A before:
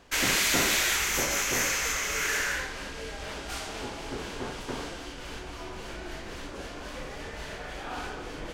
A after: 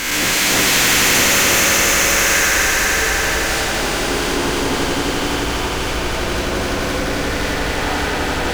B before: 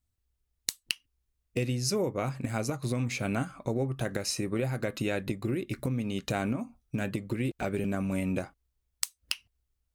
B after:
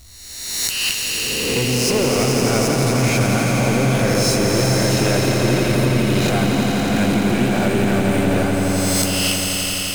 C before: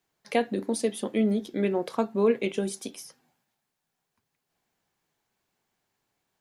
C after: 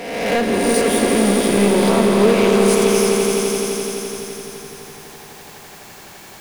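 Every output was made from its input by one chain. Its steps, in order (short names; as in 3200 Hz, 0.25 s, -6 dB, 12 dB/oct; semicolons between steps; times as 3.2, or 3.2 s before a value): spectral swells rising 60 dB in 0.68 s; power-law curve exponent 0.5; swelling echo 85 ms, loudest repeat 5, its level -7 dB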